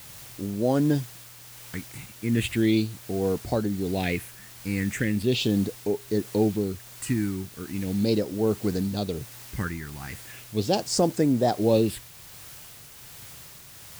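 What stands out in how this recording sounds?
phaser sweep stages 4, 0.38 Hz, lowest notch 560–3,000 Hz
a quantiser's noise floor 8 bits, dither triangular
tremolo triangle 1.3 Hz, depth 35%

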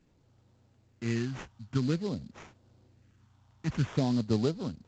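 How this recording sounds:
phaser sweep stages 4, 0.5 Hz, lowest notch 420–3,000 Hz
aliases and images of a low sample rate 4,500 Hz, jitter 20%
mu-law

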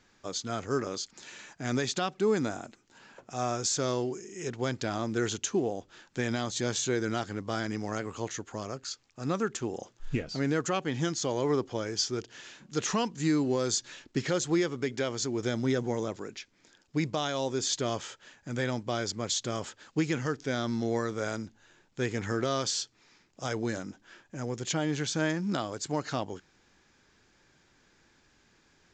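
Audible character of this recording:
mu-law

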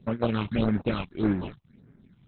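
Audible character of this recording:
aliases and images of a low sample rate 1,900 Hz, jitter 20%
phaser sweep stages 6, 1.7 Hz, lowest notch 430–4,100 Hz
Opus

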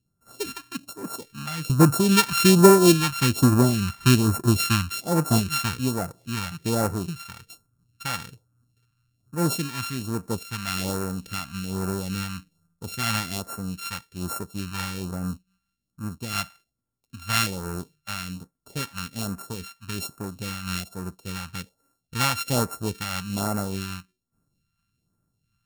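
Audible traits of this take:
a buzz of ramps at a fixed pitch in blocks of 32 samples
phaser sweep stages 2, 1.2 Hz, lowest notch 410–3,100 Hz
amplitude modulation by smooth noise

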